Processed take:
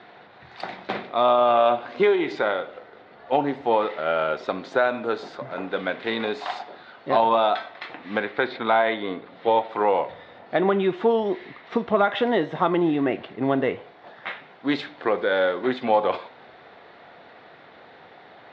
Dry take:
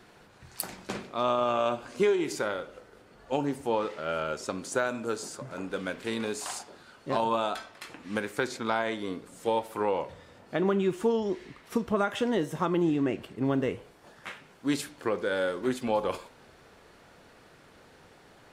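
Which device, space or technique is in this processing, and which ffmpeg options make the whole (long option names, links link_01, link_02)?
overdrive pedal into a guitar cabinet: -filter_complex "[0:a]asplit=2[link_01][link_02];[link_02]highpass=frequency=720:poles=1,volume=9dB,asoftclip=type=tanh:threshold=-11dB[link_03];[link_01][link_03]amix=inputs=2:normalize=0,lowpass=frequency=1200:poles=1,volume=-6dB,highpass=100,equalizer=frequency=720:width_type=q:width=4:gain=7,equalizer=frequency=2000:width_type=q:width=4:gain=6,equalizer=frequency=3700:width_type=q:width=4:gain=9,lowpass=frequency=4500:width=0.5412,lowpass=frequency=4500:width=1.3066,asettb=1/sr,asplit=3[link_04][link_05][link_06];[link_04]atrim=end=8.244[link_07];[link_05]atrim=start=8.24:end=9.69,asetpts=PTS-STARTPTS,afade=type=in:duration=0.004:curve=qsin,afade=type=out:start_time=1.446:duration=0.004:curve=qsin,lowpass=frequency=4300:width=0.5412,lowpass=frequency=4300:width=1.3066[link_08];[link_06]atrim=start=9.686[link_09];[link_07][link_08]acrossfade=duration=0.004:curve1=hsin:curve2=qsin[link_10];[link_10][link_09]acrossfade=duration=0.004:curve1=qsin:curve2=hsin,volume=5.5dB"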